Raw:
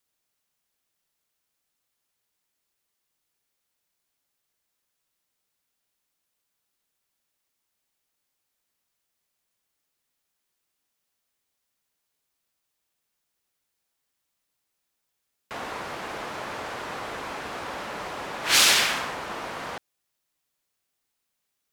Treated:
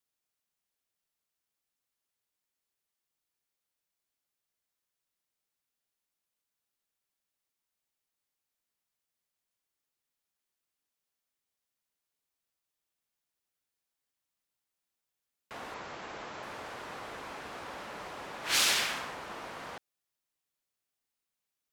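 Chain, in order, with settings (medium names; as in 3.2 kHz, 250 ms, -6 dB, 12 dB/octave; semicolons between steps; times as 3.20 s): 15.74–16.43 s: brick-wall FIR low-pass 7.8 kHz; trim -8.5 dB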